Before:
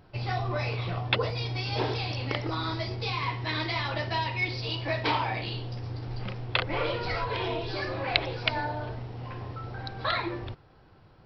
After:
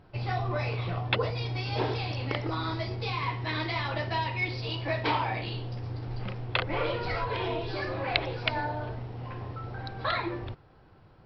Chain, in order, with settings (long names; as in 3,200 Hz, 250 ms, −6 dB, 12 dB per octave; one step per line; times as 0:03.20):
high-shelf EQ 5,200 Hz −9.5 dB